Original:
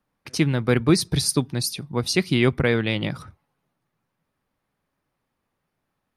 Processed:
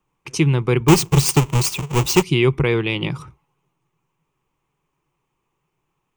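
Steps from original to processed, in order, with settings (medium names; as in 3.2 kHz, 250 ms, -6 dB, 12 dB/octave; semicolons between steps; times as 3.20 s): 0.88–2.23 s: square wave that keeps the level; rippled EQ curve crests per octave 0.71, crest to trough 11 dB; in parallel at +1 dB: peak limiter -11.5 dBFS, peak gain reduction 11.5 dB; on the sum: trim -4.5 dB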